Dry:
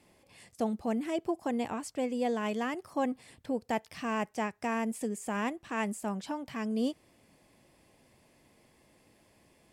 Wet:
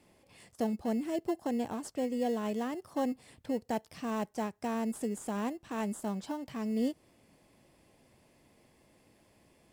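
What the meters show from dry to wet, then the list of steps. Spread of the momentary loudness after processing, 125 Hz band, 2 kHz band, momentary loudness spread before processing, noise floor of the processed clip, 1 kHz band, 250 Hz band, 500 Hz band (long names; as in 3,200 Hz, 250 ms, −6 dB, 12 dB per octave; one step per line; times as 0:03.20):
5 LU, 0.0 dB, −7.5 dB, 5 LU, −67 dBFS, −3.5 dB, 0.0 dB, −1.0 dB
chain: dynamic equaliser 2,100 Hz, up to −8 dB, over −50 dBFS, Q 0.82
in parallel at −11 dB: sample-rate reduction 2,400 Hz, jitter 0%
on the sum: level −2 dB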